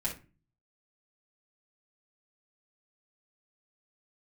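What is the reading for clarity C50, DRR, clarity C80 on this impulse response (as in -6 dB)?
8.5 dB, -6.0 dB, 16.5 dB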